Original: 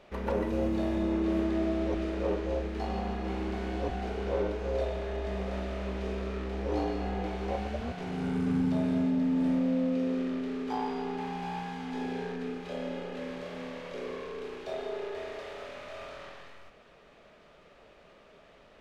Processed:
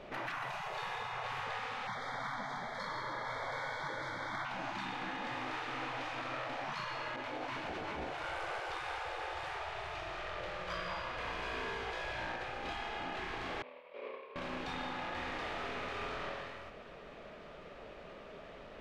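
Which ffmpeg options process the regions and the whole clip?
ffmpeg -i in.wav -filter_complex "[0:a]asettb=1/sr,asplit=3[link_01][link_02][link_03];[link_01]atrim=end=1.874[link_04];[link_02]atrim=start=1.87:end=4.45,asetpts=PTS-STARTPTS,afade=type=in:duration=0.004:curve=qsin,afade=type=out:start_time=2.576:duration=0.004:curve=qsin,asoftclip=type=hard:threshold=-25dB,asuperstop=centerf=2700:order=20:qfactor=3.2,aecho=1:1:179:0.237,atrim=end_sample=113778[link_05];[link_03]atrim=start=4.446[link_06];[link_04][link_05]acrossfade=duration=0.004:curve1=hsin:curve2=qsin[link_07];[link_07][link_06]acrossfade=duration=0.004:curve1=qsin:curve2=hsin,asettb=1/sr,asplit=3[link_08][link_09][link_10];[link_08]atrim=end=7.164[link_11];[link_09]atrim=start=7.16:end=10.01,asetpts=PTS-STARTPTS,afade=type=in:duration=0.004:curve=qsin,afade=type=out:start_time=2.846:duration=0.004:curve=qsin,agate=range=-33dB:threshold=-31dB:ratio=3:release=100:detection=peak,aecho=1:1:398|663:0.501|0.355,atrim=end_sample=125685[link_12];[link_10]atrim=start=10.006[link_13];[link_11][link_12]acrossfade=duration=0.004:curve1=hsin:curve2=qsin[link_14];[link_14][link_13]acrossfade=duration=0.004:curve1=qsin:curve2=hsin,asettb=1/sr,asplit=3[link_15][link_16][link_17];[link_15]atrim=end=13.624[link_18];[link_16]atrim=start=13.62:end=14.36,asetpts=PTS-STARTPTS,afade=type=in:duration=0.004:curve=qsin,afade=type=out:start_time=0.736:duration=0.004:curve=qsin,agate=range=-33dB:threshold=-29dB:ratio=3:release=100:detection=peak,highpass=480,equalizer=frequency=550:width_type=q:width=4:gain=5,equalizer=frequency=1000:width_type=q:width=4:gain=7,equalizer=frequency=1600:width_type=q:width=4:gain=-4,equalizer=frequency=2400:width_type=q:width=4:gain=8,lowpass=frequency=4000:width=0.5412,lowpass=frequency=4000:width=1.3066[link_19];[link_17]atrim=start=14.356[link_20];[link_18][link_19]acrossfade=duration=0.004:curve1=hsin:curve2=qsin[link_21];[link_21][link_20]acrossfade=duration=0.004:curve1=qsin:curve2=hsin,highshelf=frequency=5800:gain=-11,afftfilt=real='re*lt(hypot(re,im),0.0355)':imag='im*lt(hypot(re,im),0.0355)':win_size=1024:overlap=0.75,volume=6.5dB" out.wav

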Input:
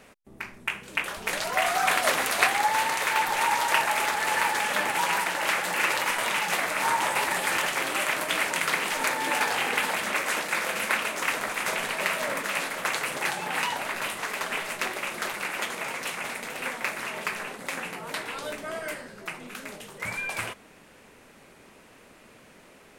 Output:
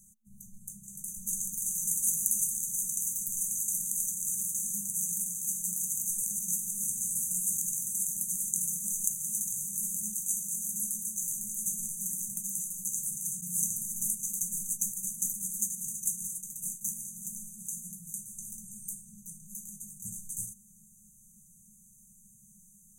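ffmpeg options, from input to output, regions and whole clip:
ffmpeg -i in.wav -filter_complex "[0:a]asettb=1/sr,asplit=3[link_01][link_02][link_03];[link_01]atrim=end=13.414[link_04];[link_02]atrim=start=13.41:end=16.94,asetpts=PTS-STARTPTS,afade=type=in:duration=0.004:curve=qsin,afade=type=out:start_time=3.526:duration=0.004:curve=qsin,agate=range=-33dB:threshold=-31dB:ratio=3:release=100:detection=peak,acontrast=42[link_05];[link_03]atrim=start=16.936[link_06];[link_04][link_05]acrossfade=duration=0.004:curve1=hsin:curve2=qsin[link_07];[link_07][link_06]acrossfade=duration=0.004:curve1=qsin:curve2=hsin,afftfilt=real='re*(1-between(b*sr/4096,220,6000))':imag='im*(1-between(b*sr/4096,220,6000))':win_size=4096:overlap=0.75,equalizer=frequency=76:width=0.37:gain=-13,volume=6dB" out.wav

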